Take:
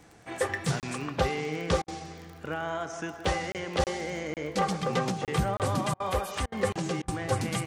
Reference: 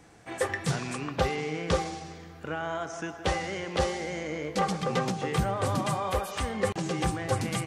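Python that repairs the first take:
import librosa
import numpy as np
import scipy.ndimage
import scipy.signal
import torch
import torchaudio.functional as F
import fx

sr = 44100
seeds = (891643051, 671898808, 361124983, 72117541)

y = fx.fix_declick_ar(x, sr, threshold=6.5)
y = fx.fix_interpolate(y, sr, at_s=(0.8, 1.84, 3.52, 3.84, 4.34, 5.25, 5.57), length_ms=28.0)
y = fx.fix_interpolate(y, sr, at_s=(1.82, 5.94, 6.46, 7.02), length_ms=59.0)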